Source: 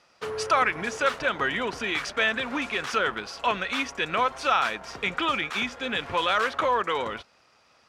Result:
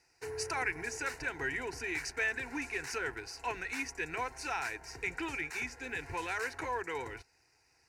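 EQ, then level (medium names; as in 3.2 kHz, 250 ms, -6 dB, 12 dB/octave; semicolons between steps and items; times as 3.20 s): static phaser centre 500 Hz, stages 4; static phaser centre 1.4 kHz, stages 4; +1.0 dB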